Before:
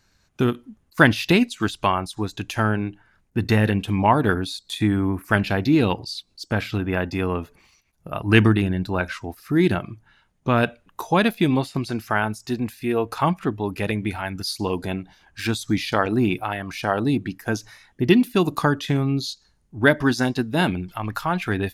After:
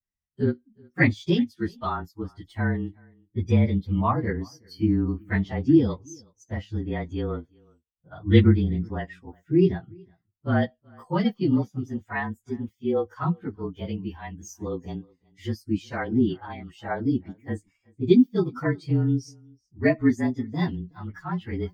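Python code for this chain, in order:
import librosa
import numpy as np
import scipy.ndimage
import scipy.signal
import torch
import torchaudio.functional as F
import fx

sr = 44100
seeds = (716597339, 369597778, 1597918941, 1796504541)

p1 = fx.partial_stretch(x, sr, pct=110)
p2 = p1 + fx.echo_single(p1, sr, ms=371, db=-19.0, dry=0)
p3 = fx.vibrato(p2, sr, rate_hz=0.34, depth_cents=22.0)
y = fx.spectral_expand(p3, sr, expansion=1.5)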